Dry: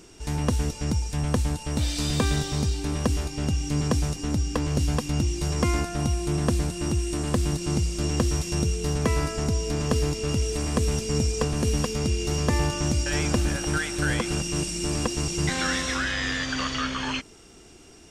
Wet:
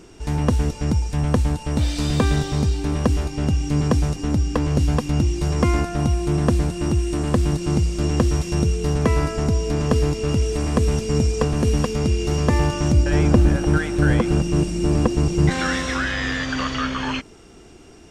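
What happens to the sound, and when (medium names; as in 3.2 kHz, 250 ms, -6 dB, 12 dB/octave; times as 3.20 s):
12.92–15.51 s: tilt shelf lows +4.5 dB
whole clip: treble shelf 3 kHz -9 dB; trim +5.5 dB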